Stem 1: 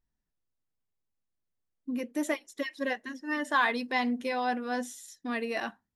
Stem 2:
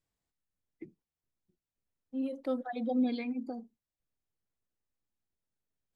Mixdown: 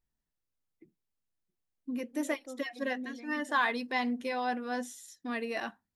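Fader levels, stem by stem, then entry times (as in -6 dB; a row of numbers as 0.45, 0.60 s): -2.5, -12.0 dB; 0.00, 0.00 s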